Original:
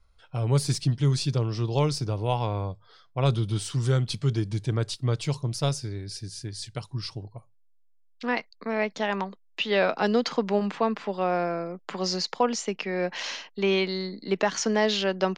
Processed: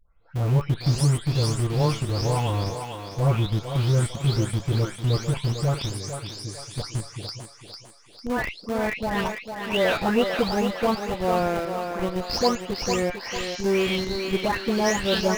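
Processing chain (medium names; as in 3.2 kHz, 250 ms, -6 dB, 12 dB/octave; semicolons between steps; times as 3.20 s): delay that grows with frequency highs late, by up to 401 ms; in parallel at -5.5 dB: Schmitt trigger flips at -26 dBFS; on the sum: thinning echo 450 ms, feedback 49%, high-pass 310 Hz, level -5.5 dB; trim +1 dB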